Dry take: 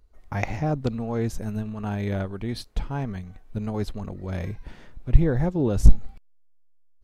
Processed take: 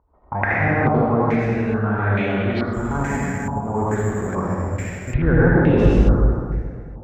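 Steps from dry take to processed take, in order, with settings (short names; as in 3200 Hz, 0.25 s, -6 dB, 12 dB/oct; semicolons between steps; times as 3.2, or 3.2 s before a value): HPF 61 Hz; reverb RT60 2.4 s, pre-delay 67 ms, DRR -8 dB; 2.73–5.14 careless resampling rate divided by 6×, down filtered, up zero stuff; stepped low-pass 2.3 Hz 950–2700 Hz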